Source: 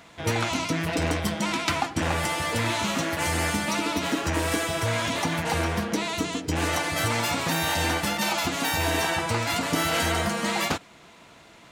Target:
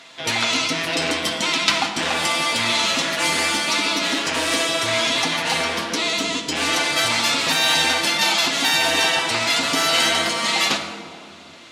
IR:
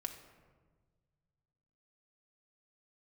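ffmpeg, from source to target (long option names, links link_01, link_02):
-filter_complex "[0:a]highpass=230,equalizer=frequency=4000:width_type=o:width=1.8:gain=11[link_01];[1:a]atrim=start_sample=2205,asetrate=23814,aresample=44100[link_02];[link_01][link_02]afir=irnorm=-1:irlink=0"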